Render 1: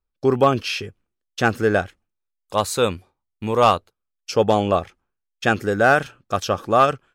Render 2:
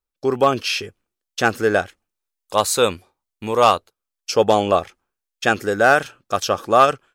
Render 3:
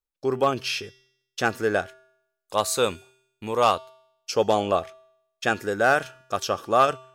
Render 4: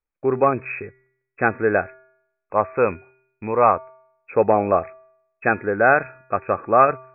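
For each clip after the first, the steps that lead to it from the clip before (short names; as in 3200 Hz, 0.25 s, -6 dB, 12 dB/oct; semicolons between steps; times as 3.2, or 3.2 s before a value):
tone controls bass -7 dB, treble +4 dB; AGC; gain -1 dB
resonator 130 Hz, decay 0.78 s, harmonics odd, mix 50%
brick-wall FIR low-pass 2600 Hz; gain +4.5 dB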